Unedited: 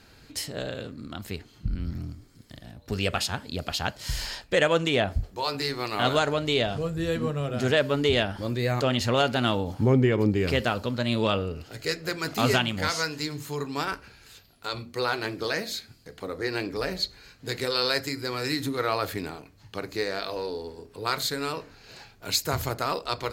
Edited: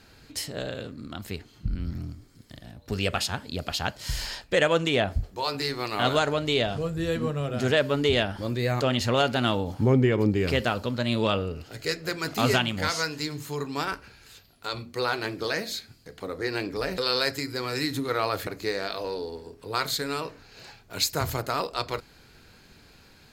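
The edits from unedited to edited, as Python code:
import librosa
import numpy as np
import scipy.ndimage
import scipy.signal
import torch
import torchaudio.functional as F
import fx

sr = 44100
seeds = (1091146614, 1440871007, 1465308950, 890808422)

y = fx.edit(x, sr, fx.cut(start_s=16.98, length_s=0.69),
    fx.cut(start_s=19.16, length_s=0.63), tone=tone)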